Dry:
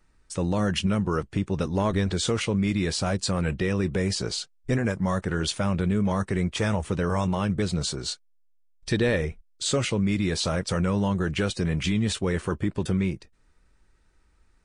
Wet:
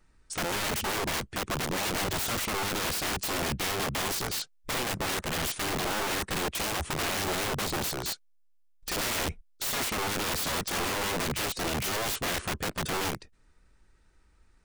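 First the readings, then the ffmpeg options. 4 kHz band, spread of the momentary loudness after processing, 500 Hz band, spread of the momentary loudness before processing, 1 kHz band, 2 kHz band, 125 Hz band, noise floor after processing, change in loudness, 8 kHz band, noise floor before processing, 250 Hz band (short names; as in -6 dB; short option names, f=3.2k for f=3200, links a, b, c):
+0.5 dB, 4 LU, -6.5 dB, 5 LU, +1.5 dB, +1.5 dB, -12.0 dB, -62 dBFS, -3.5 dB, +2.5 dB, -62 dBFS, -11.5 dB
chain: -af "aeval=exprs='(mod(18.8*val(0)+1,2)-1)/18.8':c=same"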